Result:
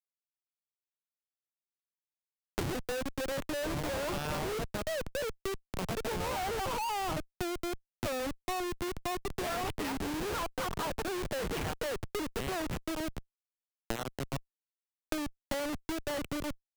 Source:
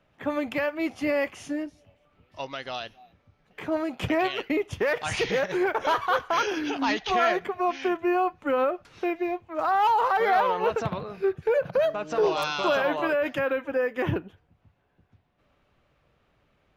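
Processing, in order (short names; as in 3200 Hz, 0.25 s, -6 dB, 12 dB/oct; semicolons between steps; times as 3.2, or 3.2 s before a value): whole clip reversed; Schmitt trigger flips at -27.5 dBFS; three-band squash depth 100%; gain -7 dB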